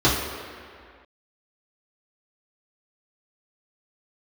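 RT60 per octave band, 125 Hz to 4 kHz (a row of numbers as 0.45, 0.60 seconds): 1.6, 2.0, 2.0, 2.2, 2.3, 1.6 seconds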